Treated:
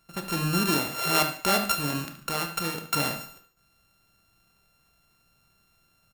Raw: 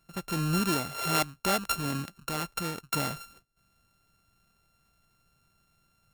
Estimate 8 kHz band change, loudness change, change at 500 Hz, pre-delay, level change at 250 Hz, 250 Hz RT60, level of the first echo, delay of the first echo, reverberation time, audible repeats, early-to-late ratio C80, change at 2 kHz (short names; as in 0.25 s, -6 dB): +4.0 dB, +4.0 dB, +3.5 dB, 22 ms, +2.0 dB, 0.45 s, -12.5 dB, 73 ms, 0.45 s, 3, 13.5 dB, +5.0 dB